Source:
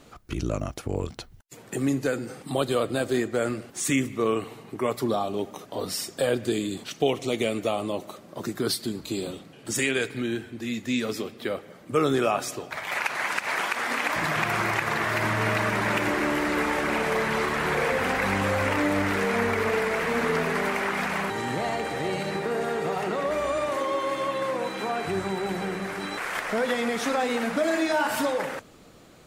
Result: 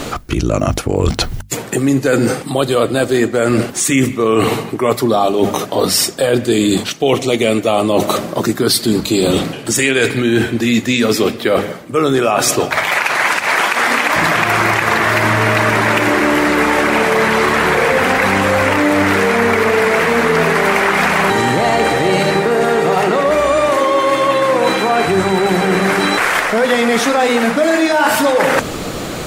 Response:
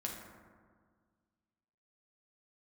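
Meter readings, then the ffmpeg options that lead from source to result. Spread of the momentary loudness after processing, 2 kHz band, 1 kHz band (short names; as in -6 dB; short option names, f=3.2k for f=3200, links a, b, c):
4 LU, +13.0 dB, +13.5 dB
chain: -af "bandreject=f=50:t=h:w=6,bandreject=f=100:t=h:w=6,bandreject=f=150:t=h:w=6,bandreject=f=200:t=h:w=6,bandreject=f=250:t=h:w=6,areverse,acompressor=threshold=-40dB:ratio=8,areverse,alimiter=level_in=30dB:limit=-1dB:release=50:level=0:latency=1,volume=-1dB"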